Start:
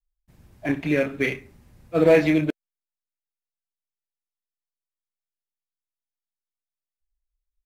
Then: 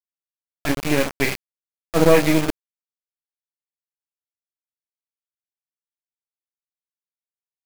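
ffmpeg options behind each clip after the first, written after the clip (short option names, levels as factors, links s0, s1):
-af "aeval=exprs='if(lt(val(0),0),0.251*val(0),val(0))':c=same,acrusher=bits=4:mix=0:aa=0.000001,volume=1.78"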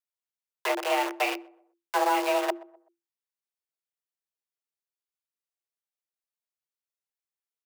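-filter_complex "[0:a]acrossover=split=270|2800[s0][s1][s2];[s0]acompressor=threshold=0.0282:ratio=4[s3];[s1]acompressor=threshold=0.0794:ratio=4[s4];[s2]acompressor=threshold=0.0141:ratio=4[s5];[s3][s4][s5]amix=inputs=3:normalize=0,asplit=2[s6][s7];[s7]adelay=126,lowpass=f=910:p=1,volume=0.0891,asplit=2[s8][s9];[s9]adelay=126,lowpass=f=910:p=1,volume=0.39,asplit=2[s10][s11];[s11]adelay=126,lowpass=f=910:p=1,volume=0.39[s12];[s6][s8][s10][s12]amix=inputs=4:normalize=0,afreqshift=340,volume=0.841"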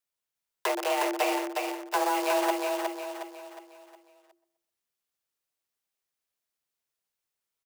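-filter_complex "[0:a]acrossover=split=1200|4400[s0][s1][s2];[s0]acompressor=threshold=0.0251:ratio=4[s3];[s1]acompressor=threshold=0.00794:ratio=4[s4];[s2]acompressor=threshold=0.00794:ratio=4[s5];[s3][s4][s5]amix=inputs=3:normalize=0,asplit=2[s6][s7];[s7]aecho=0:1:362|724|1086|1448|1810:0.668|0.281|0.118|0.0495|0.0208[s8];[s6][s8]amix=inputs=2:normalize=0,volume=1.78"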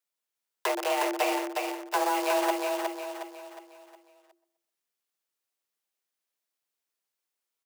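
-af "highpass=200"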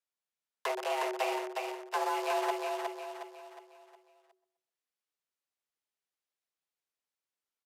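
-af "highshelf=f=7900:g=-8.5,aresample=32000,aresample=44100,afreqshift=30,volume=0.562"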